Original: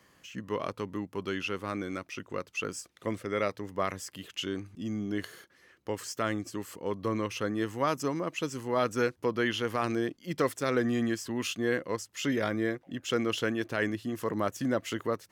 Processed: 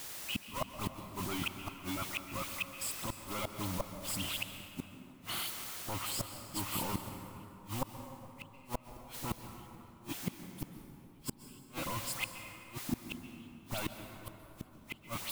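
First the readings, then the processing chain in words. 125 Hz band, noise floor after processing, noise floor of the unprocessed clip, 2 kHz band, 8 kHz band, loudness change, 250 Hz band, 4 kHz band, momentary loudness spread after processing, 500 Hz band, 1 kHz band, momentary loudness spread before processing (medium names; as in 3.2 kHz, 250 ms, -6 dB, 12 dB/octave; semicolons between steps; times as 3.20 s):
-5.0 dB, -57 dBFS, -64 dBFS, -8.5 dB, +0.5 dB, -7.5 dB, -11.5 dB, -2.5 dB, 14 LU, -16.0 dB, -7.5 dB, 8 LU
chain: high-pass 47 Hz 12 dB/octave; dynamic bell 190 Hz, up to -3 dB, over -48 dBFS, Q 4.9; waveshaping leveller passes 5; peak limiter -24.5 dBFS, peak gain reduction 9.5 dB; static phaser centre 1.7 kHz, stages 6; level held to a coarse grid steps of 11 dB; phase dispersion highs, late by 89 ms, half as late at 2.4 kHz; added noise white -51 dBFS; inverted gate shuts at -28 dBFS, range -38 dB; plate-style reverb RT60 3.1 s, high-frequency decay 0.5×, pre-delay 115 ms, DRR 7 dB; trim +6 dB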